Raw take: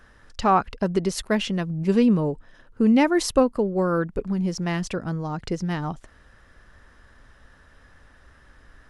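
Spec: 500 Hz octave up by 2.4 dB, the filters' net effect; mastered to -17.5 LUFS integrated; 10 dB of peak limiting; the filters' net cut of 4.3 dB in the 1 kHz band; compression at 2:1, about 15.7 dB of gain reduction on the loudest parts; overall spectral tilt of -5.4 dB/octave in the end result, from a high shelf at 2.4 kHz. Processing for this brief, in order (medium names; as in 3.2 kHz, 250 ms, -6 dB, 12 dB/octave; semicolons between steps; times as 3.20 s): peaking EQ 500 Hz +4.5 dB; peaking EQ 1 kHz -8.5 dB; treble shelf 2.4 kHz +5 dB; compression 2:1, threshold -41 dBFS; trim +20 dB; peak limiter -8.5 dBFS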